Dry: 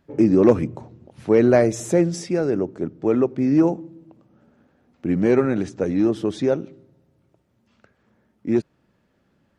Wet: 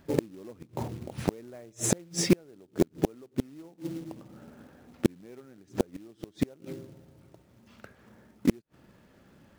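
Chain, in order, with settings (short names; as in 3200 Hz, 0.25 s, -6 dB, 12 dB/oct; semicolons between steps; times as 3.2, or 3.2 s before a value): flipped gate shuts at -15 dBFS, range -38 dB; short-mantissa float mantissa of 2-bit; gain +7 dB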